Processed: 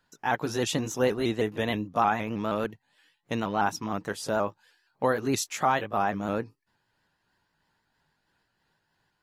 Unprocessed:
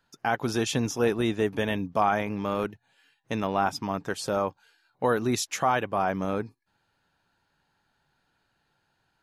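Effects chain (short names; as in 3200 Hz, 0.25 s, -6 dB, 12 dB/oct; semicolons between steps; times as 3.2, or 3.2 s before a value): repeated pitch sweeps +2 st, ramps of 0.157 s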